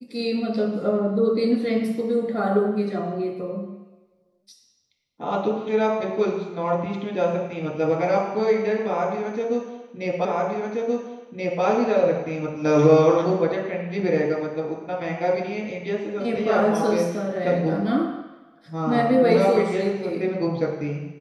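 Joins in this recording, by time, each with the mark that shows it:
10.25 s: repeat of the last 1.38 s

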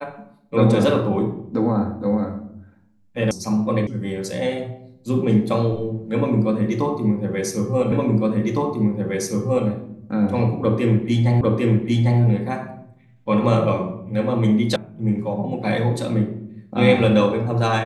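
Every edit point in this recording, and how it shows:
3.31 s: sound stops dead
3.87 s: sound stops dead
7.92 s: repeat of the last 1.76 s
11.41 s: repeat of the last 0.8 s
14.76 s: sound stops dead

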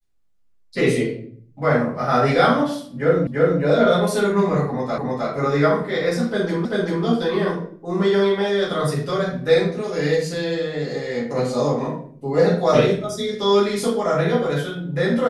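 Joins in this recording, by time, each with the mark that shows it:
3.27 s: repeat of the last 0.34 s
4.98 s: repeat of the last 0.31 s
6.65 s: repeat of the last 0.39 s

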